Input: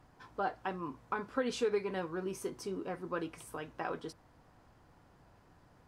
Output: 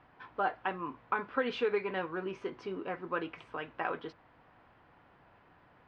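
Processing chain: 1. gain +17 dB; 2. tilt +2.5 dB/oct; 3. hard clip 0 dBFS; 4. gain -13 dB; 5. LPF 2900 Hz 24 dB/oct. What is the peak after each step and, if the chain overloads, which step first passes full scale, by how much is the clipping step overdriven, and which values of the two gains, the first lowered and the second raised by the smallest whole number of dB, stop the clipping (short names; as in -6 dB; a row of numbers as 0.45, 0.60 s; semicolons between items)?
-3.5, -4.5, -4.5, -17.5, -17.5 dBFS; no overload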